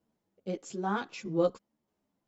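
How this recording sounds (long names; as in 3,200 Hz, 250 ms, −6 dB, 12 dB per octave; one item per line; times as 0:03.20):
tremolo saw down 1.6 Hz, depth 40%
a shimmering, thickened sound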